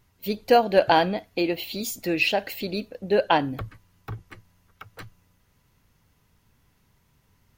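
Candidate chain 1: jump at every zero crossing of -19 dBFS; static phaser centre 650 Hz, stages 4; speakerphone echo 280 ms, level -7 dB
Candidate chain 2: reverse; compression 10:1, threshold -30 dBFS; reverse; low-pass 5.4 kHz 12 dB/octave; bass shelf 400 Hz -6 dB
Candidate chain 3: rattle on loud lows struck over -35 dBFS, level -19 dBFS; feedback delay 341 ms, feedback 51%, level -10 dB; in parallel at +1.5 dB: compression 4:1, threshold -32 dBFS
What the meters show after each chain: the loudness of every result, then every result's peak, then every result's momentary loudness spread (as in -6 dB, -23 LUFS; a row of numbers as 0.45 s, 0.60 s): -23.0 LUFS, -38.0 LUFS, -21.0 LUFS; -5.0 dBFS, -22.0 dBFS, -3.0 dBFS; 9 LU, 14 LU, 19 LU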